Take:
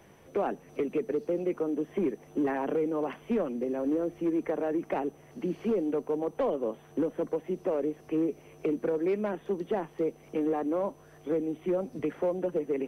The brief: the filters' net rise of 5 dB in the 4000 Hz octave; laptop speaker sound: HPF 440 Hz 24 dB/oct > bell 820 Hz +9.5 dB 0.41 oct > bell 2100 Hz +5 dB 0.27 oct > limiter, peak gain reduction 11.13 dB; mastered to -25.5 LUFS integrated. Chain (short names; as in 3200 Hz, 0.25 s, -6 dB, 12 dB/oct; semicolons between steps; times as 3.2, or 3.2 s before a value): HPF 440 Hz 24 dB/oct; bell 820 Hz +9.5 dB 0.41 oct; bell 2100 Hz +5 dB 0.27 oct; bell 4000 Hz +7 dB; gain +12 dB; limiter -15 dBFS